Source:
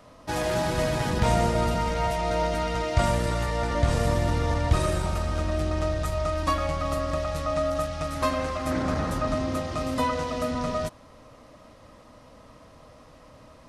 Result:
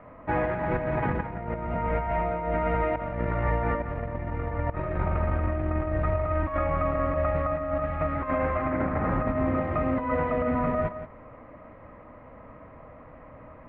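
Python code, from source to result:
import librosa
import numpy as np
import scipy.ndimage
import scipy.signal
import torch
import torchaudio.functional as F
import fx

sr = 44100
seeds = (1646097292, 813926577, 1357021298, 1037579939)

y = scipy.signal.sosfilt(scipy.signal.cheby1(4, 1.0, 2200.0, 'lowpass', fs=sr, output='sos'), x)
y = fx.over_compress(y, sr, threshold_db=-28.0, ratio=-0.5)
y = y + 10.0 ** (-11.5 / 20.0) * np.pad(y, (int(171 * sr / 1000.0), 0))[:len(y)]
y = F.gain(torch.from_numpy(y), 1.5).numpy()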